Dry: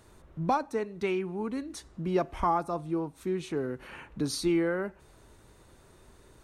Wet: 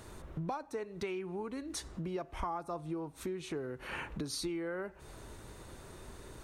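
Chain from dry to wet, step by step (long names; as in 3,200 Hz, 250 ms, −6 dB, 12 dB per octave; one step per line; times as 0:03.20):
downward compressor 8 to 1, threshold −41 dBFS, peak gain reduction 19 dB
dynamic equaliser 220 Hz, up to −6 dB, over −59 dBFS, Q 2.1
level +6.5 dB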